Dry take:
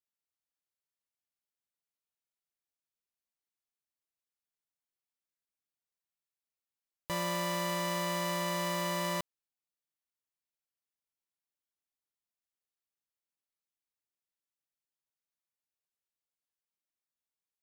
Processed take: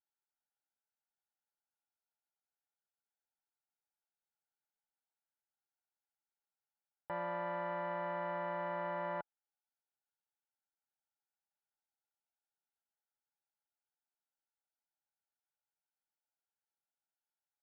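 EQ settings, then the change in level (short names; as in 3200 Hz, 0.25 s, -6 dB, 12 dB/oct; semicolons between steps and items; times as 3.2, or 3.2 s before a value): double band-pass 1100 Hz, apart 0.75 oct; air absorption 360 m; tilt -3 dB/oct; +8.5 dB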